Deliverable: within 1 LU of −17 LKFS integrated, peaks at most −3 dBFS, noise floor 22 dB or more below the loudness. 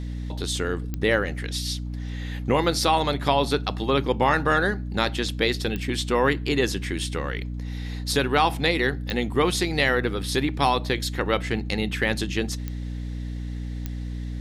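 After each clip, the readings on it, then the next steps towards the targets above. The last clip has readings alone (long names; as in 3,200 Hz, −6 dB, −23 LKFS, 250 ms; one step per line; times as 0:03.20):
number of clicks 5; mains hum 60 Hz; hum harmonics up to 300 Hz; level of the hum −29 dBFS; integrated loudness −25.0 LKFS; sample peak −6.0 dBFS; target loudness −17.0 LKFS
→ click removal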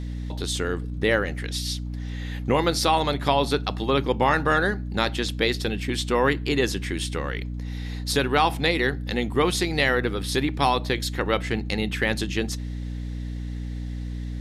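number of clicks 0; mains hum 60 Hz; hum harmonics up to 300 Hz; level of the hum −29 dBFS
→ hum removal 60 Hz, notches 5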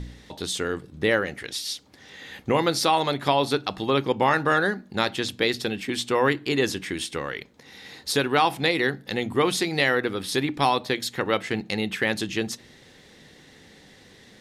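mains hum none found; integrated loudness −24.5 LKFS; sample peak −6.5 dBFS; target loudness −17.0 LKFS
→ level +7.5 dB
brickwall limiter −3 dBFS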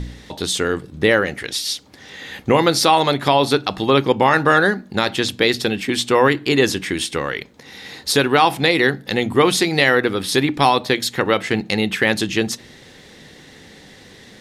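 integrated loudness −17.5 LKFS; sample peak −3.0 dBFS; background noise floor −45 dBFS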